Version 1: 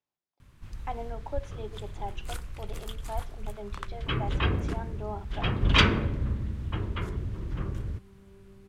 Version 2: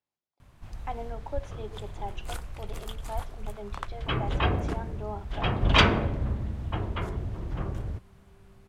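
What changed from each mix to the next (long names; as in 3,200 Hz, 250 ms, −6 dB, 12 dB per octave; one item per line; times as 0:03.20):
first sound: add parametric band 720 Hz +11 dB 0.74 octaves
second sound −6.5 dB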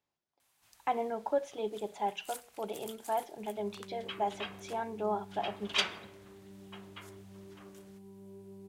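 speech +5.0 dB
first sound: add first difference
second sound +11.0 dB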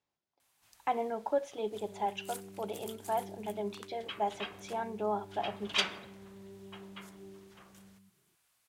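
second sound: entry −1.85 s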